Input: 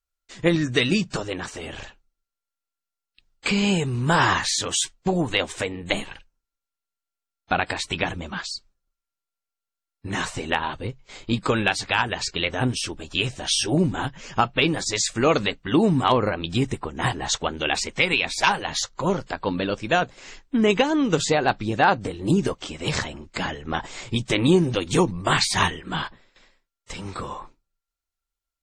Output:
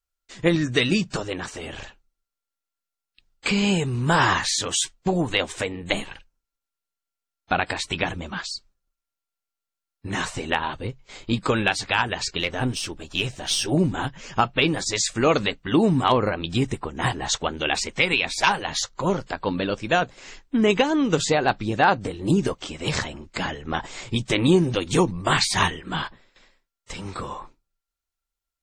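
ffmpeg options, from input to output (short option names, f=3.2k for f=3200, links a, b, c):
-filter_complex "[0:a]asplit=3[a][b][c];[a]afade=t=out:st=12.39:d=0.02[d];[b]aeval=exprs='if(lt(val(0),0),0.708*val(0),val(0))':c=same,afade=t=in:st=12.39:d=0.02,afade=t=out:st=13.7:d=0.02[e];[c]afade=t=in:st=13.7:d=0.02[f];[d][e][f]amix=inputs=3:normalize=0"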